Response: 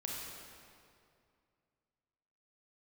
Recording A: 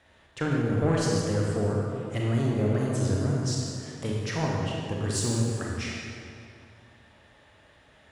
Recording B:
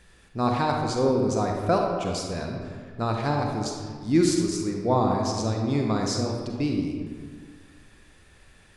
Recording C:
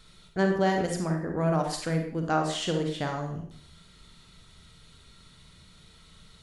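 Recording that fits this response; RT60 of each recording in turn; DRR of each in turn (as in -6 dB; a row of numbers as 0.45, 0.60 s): A; 2.4, 1.8, 0.60 s; -3.0, 1.0, 2.5 dB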